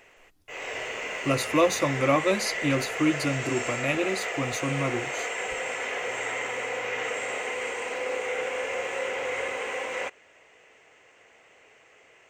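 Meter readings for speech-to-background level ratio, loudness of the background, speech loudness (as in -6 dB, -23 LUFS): 3.5 dB, -30.5 LUFS, -27.0 LUFS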